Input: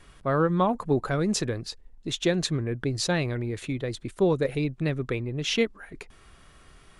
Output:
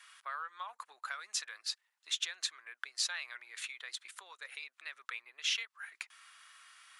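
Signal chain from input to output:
downward compressor 6 to 1, threshold −30 dBFS, peak gain reduction 12 dB
high-pass filter 1,200 Hz 24 dB per octave
level +1 dB

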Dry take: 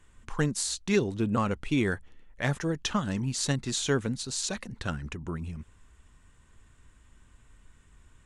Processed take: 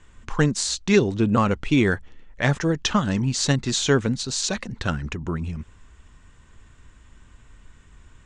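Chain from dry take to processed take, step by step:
low-pass filter 7,500 Hz 24 dB per octave
level +7.5 dB

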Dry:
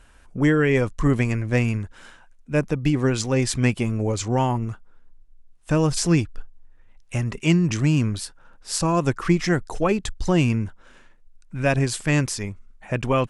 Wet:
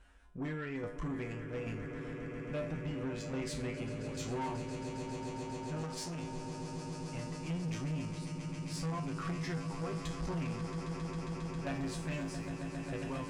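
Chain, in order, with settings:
shaped tremolo saw down 1.2 Hz, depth 75%
downward compressor, threshold −21 dBFS, peak gain reduction 7.5 dB
0:11.74–0:12.46: background noise white −60 dBFS
high-shelf EQ 6,800 Hz −10 dB
tuned comb filter 54 Hz, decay 0.37 s, harmonics odd, mix 90%
echo that builds up and dies away 135 ms, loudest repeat 8, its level −14 dB
soft clipping −34 dBFS, distortion −11 dB
0:05.83–0:06.23: low-shelf EQ 210 Hz −9.5 dB
level +1.5 dB

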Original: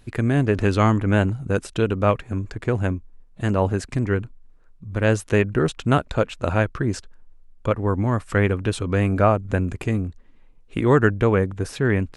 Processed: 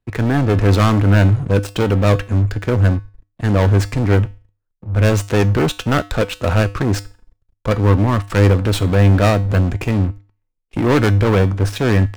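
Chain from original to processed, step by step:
stylus tracing distortion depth 0.06 ms
high-shelf EQ 6,300 Hz −8.5 dB
leveller curve on the samples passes 5
tuned comb filter 100 Hz, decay 0.4 s, harmonics odd, mix 60%
multiband upward and downward expander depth 40%

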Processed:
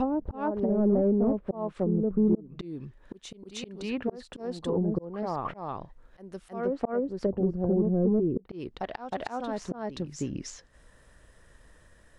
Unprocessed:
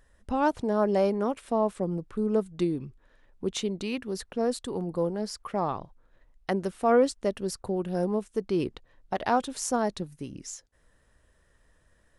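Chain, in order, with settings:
backwards echo 314 ms −5.5 dB
volume swells 609 ms
in parallel at −5 dB: wave folding −23.5 dBFS
on the sum: treble cut that deepens with the level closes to 370 Hz, closed at −24.5 dBFS
level +3 dB

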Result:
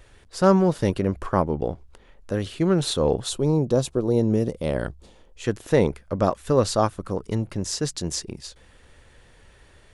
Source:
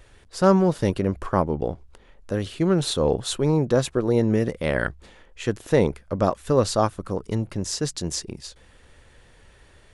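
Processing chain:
0:03.29–0:05.44: parametric band 1,800 Hz −12 dB 1.2 octaves

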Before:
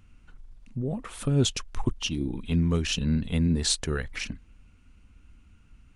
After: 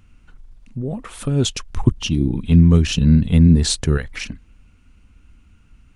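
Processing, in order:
0:01.70–0:03.98: parametric band 110 Hz +10 dB 2.8 octaves
level +4.5 dB

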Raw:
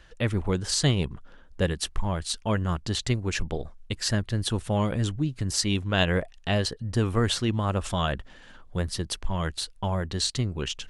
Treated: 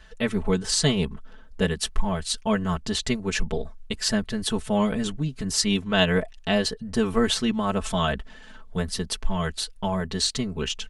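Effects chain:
comb filter 4.6 ms, depth 96%

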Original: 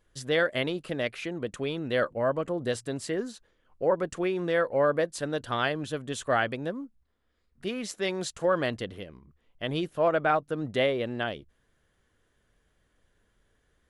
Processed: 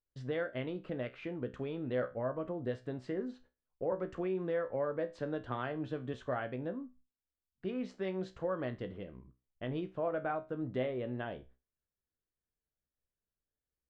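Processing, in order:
noise gate −55 dBFS, range −23 dB
downward compressor 2 to 1, threshold −32 dBFS, peak gain reduction 7.5 dB
head-to-tape spacing loss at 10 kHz 37 dB
tuned comb filter 63 Hz, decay 0.27 s, harmonics all, mix 70%
0:03.92–0:06.14: multiband upward and downward compressor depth 40%
level +3 dB

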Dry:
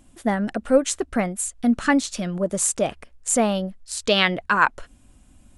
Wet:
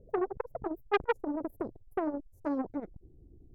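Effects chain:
gliding playback speed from 187% → 128%
inverse Chebyshev low-pass filter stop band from 1,100 Hz, stop band 40 dB
saturating transformer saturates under 1,200 Hz
level −2 dB

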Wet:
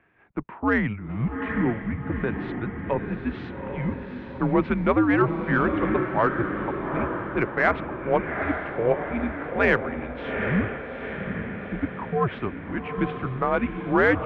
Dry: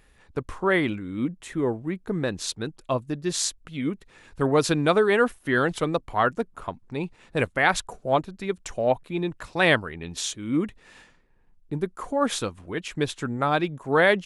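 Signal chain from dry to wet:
0:01.09–0:01.87: converter with a step at zero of −34 dBFS
feedback delay with all-pass diffusion 824 ms, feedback 56%, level −6 dB
single-sideband voice off tune −110 Hz 190–2,600 Hz
in parallel at −10 dB: soft clipping −16 dBFS, distortion −14 dB
on the sum: level −2 dB

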